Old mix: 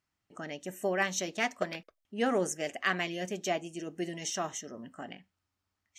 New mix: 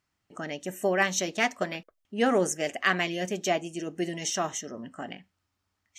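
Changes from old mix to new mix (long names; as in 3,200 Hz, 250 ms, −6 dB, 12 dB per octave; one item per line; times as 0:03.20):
speech +5.0 dB
background: add Savitzky-Golay smoothing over 41 samples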